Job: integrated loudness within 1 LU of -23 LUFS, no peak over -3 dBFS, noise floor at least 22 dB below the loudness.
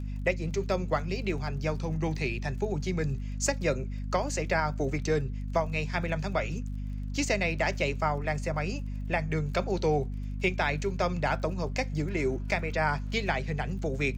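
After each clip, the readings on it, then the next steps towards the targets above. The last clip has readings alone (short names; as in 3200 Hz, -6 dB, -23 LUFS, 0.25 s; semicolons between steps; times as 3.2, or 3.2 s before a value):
ticks 29/s; hum 50 Hz; harmonics up to 250 Hz; hum level -32 dBFS; loudness -30.5 LUFS; peak -14.5 dBFS; loudness target -23.0 LUFS
-> de-click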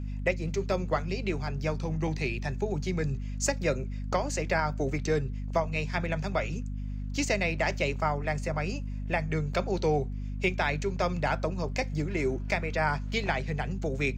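ticks 0/s; hum 50 Hz; harmonics up to 250 Hz; hum level -32 dBFS
-> de-hum 50 Hz, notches 5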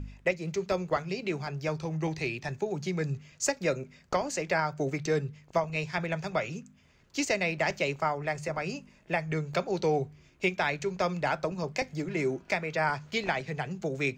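hum none; loudness -31.5 LUFS; peak -16.0 dBFS; loudness target -23.0 LUFS
-> gain +8.5 dB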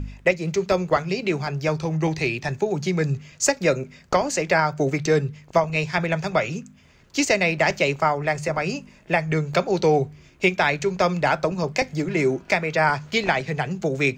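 loudness -23.0 LUFS; peak -7.5 dBFS; noise floor -52 dBFS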